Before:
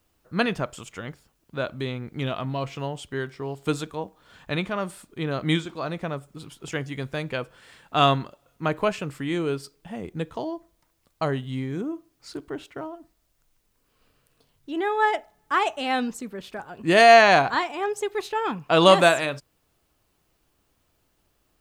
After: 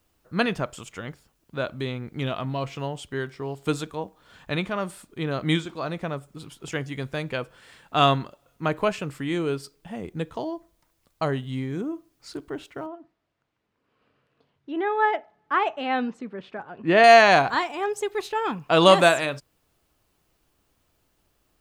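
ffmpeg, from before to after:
ffmpeg -i in.wav -filter_complex "[0:a]asettb=1/sr,asplit=3[link_01][link_02][link_03];[link_01]atrim=end=12.864[link_04];[link_02]atrim=start=12.86:end=17.04,asetpts=PTS-STARTPTS,afade=type=in:duration=0.004:curve=qsin,afade=type=out:start_time=4.176:duration=0.004:curve=qsin,highpass=120,lowpass=2600[link_05];[link_03]atrim=start=17.036[link_06];[link_04][link_05]acrossfade=duration=0.004:curve1=hsin:curve2=qsin[link_07];[link_07][link_06]acrossfade=duration=0.004:curve1=qsin:curve2=hsin" out.wav

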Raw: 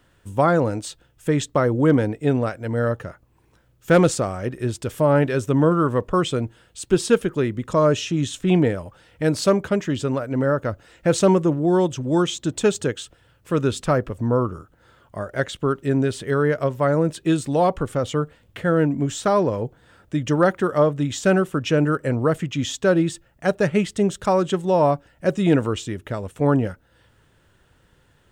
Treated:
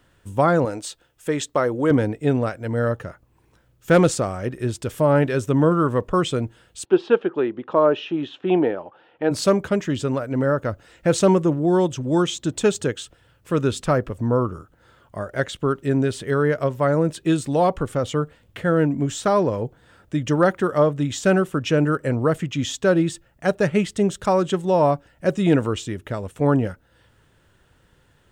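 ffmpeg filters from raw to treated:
ffmpeg -i in.wav -filter_complex "[0:a]asettb=1/sr,asplit=3[link_01][link_02][link_03];[link_01]atrim=end=0.654[link_04];[link_02]atrim=start=0.65:end=1.91,asetpts=PTS-STARTPTS,afade=type=in:duration=0.004:curve=qsin,afade=type=out:start_time=1.256:duration=0.004:curve=qsin,bass=frequency=250:gain=-10,treble=frequency=4000:gain=1[link_05];[link_03]atrim=start=1.906[link_06];[link_04][link_05]acrossfade=duration=0.004:curve1=hsin:curve2=qsin[link_07];[link_07][link_06]acrossfade=duration=0.004:curve1=qsin:curve2=hsin,asplit=3[link_08][link_09][link_10];[link_08]afade=type=out:start_time=6.84:duration=0.02[link_11];[link_09]highpass=310,equalizer=frequency=350:width_type=q:width=4:gain=5,equalizer=frequency=810:width_type=q:width=4:gain=8,equalizer=frequency=2100:width_type=q:width=4:gain=-7,lowpass=frequency=3100:width=0.5412,lowpass=frequency=3100:width=1.3066,afade=type=in:start_time=6.84:duration=0.02,afade=type=out:start_time=9.3:duration=0.02[link_12];[link_10]afade=type=in:start_time=9.3:duration=0.02[link_13];[link_11][link_12][link_13]amix=inputs=3:normalize=0" out.wav

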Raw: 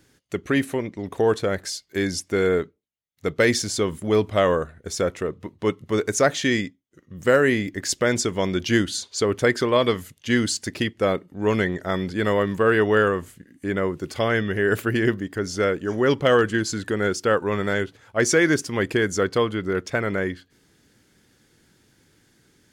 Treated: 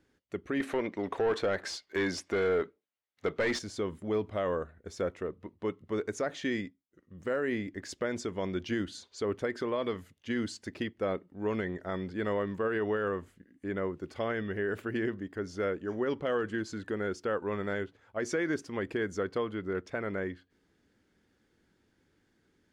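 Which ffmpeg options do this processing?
ffmpeg -i in.wav -filter_complex "[0:a]asettb=1/sr,asplit=3[link_01][link_02][link_03];[link_01]atrim=end=0.604[link_04];[link_02]atrim=start=0.6:end=3.59,asetpts=PTS-STARTPTS,afade=type=in:duration=0.004:curve=qsin,afade=type=out:start_time=2.986:duration=0.004:curve=qsin,asplit=2[link_05][link_06];[link_06]highpass=frequency=720:poles=1,volume=20dB,asoftclip=type=tanh:threshold=-6dB[link_07];[link_05][link_07]amix=inputs=2:normalize=0,lowpass=frequency=4300:poles=1,volume=-6dB[link_08];[link_03]atrim=start=3.586[link_09];[link_04][link_08]acrossfade=duration=0.004:curve1=hsin:curve2=qsin[link_10];[link_10][link_09]acrossfade=duration=0.004:curve1=qsin:curve2=hsin,lowpass=frequency=1900:poles=1,equalizer=frequency=130:width=3:gain=-9,alimiter=limit=-13.5dB:level=0:latency=1:release=59,volume=-8.5dB" out.wav

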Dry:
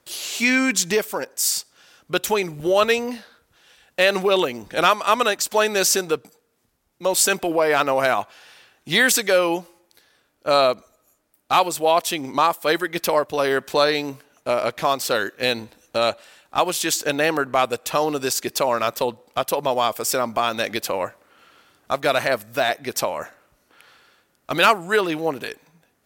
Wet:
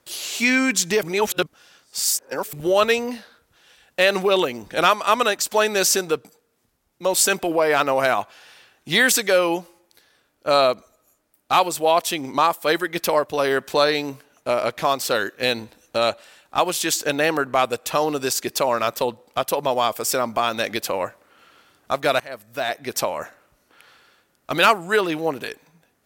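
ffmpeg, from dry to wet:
ffmpeg -i in.wav -filter_complex "[0:a]asplit=4[link_01][link_02][link_03][link_04];[link_01]atrim=end=1.032[link_05];[link_02]atrim=start=1.028:end=2.532,asetpts=PTS-STARTPTS,areverse[link_06];[link_03]atrim=start=2.528:end=22.2,asetpts=PTS-STARTPTS,afade=type=out:start_time=19.668:duration=0.004:curve=hsin:silence=0.0749894[link_07];[link_04]atrim=start=22.2,asetpts=PTS-STARTPTS,afade=type=in:duration=0.76:silence=0.0749894[link_08];[link_05][link_06]acrossfade=duration=0.004:curve1=hsin:curve2=hsin[link_09];[link_07][link_08]concat=n=2:v=0:a=1[link_10];[link_09][link_10]acrossfade=duration=0.004:curve1=hsin:curve2=hsin" out.wav

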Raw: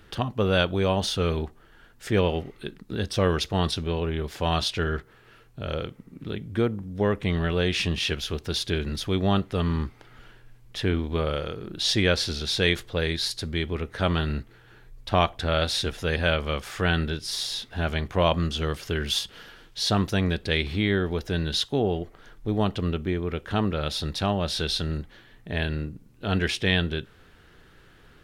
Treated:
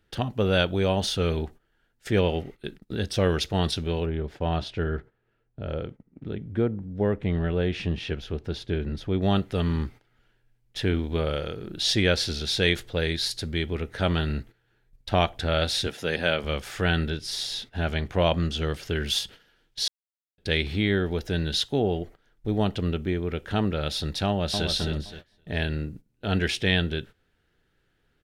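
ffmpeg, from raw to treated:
ffmpeg -i in.wav -filter_complex "[0:a]asplit=3[link_01][link_02][link_03];[link_01]afade=type=out:start_time=4.05:duration=0.02[link_04];[link_02]lowpass=frequency=1100:poles=1,afade=type=in:start_time=4.05:duration=0.02,afade=type=out:start_time=9.21:duration=0.02[link_05];[link_03]afade=type=in:start_time=9.21:duration=0.02[link_06];[link_04][link_05][link_06]amix=inputs=3:normalize=0,asettb=1/sr,asplit=3[link_07][link_08][link_09];[link_07]atrim=end=15.874[link_10];[link_08]atrim=start=15.87:end=16.44,asetpts=PTS-STARTPTS,afade=type=in:duration=0.004:curve=qsin,afade=type=out:start_time=0.566:duration=0.004:curve=qsin,highpass=160[link_11];[link_09]atrim=start=16.436[link_12];[link_10][link_11]acrossfade=duration=0.004:curve1=hsin:curve2=qsin[link_13];[link_13][link_12]acrossfade=duration=0.004:curve1=qsin:curve2=hsin,asettb=1/sr,asplit=3[link_14][link_15][link_16];[link_14]atrim=end=17.104[link_17];[link_15]atrim=start=17.1:end=18.95,asetpts=PTS-STARTPTS,afade=type=in:duration=0.004:curve=qsin,afade=type=out:start_time=1.846:duration=0.004:curve=qsin,highshelf=frequency=8200:gain=-5[link_18];[link_16]atrim=start=18.946[link_19];[link_17][link_18]acrossfade=duration=0.004:curve1=hsin:curve2=qsin[link_20];[link_20][link_19]acrossfade=duration=0.004:curve1=qsin:curve2=hsin,asplit=2[link_21][link_22];[link_22]afade=type=in:start_time=24.27:duration=0.01,afade=type=out:start_time=24.68:duration=0.01,aecho=0:1:260|520|780|1040:0.530884|0.18581|0.0650333|0.0227617[link_23];[link_21][link_23]amix=inputs=2:normalize=0,asplit=3[link_24][link_25][link_26];[link_24]atrim=end=19.88,asetpts=PTS-STARTPTS,afade=type=out:start_time=19.876:duration=0.004:curve=hsin[link_27];[link_25]atrim=start=19.88:end=20.38,asetpts=PTS-STARTPTS,volume=0[link_28];[link_26]atrim=start=20.38,asetpts=PTS-STARTPTS,afade=type=in:duration=0.004:curve=hsin[link_29];[link_27][link_28][link_29]concat=n=3:v=0:a=1,agate=range=-16dB:threshold=-41dB:ratio=16:detection=peak,equalizer=frequency=1100:width=4.4:gain=-7" out.wav

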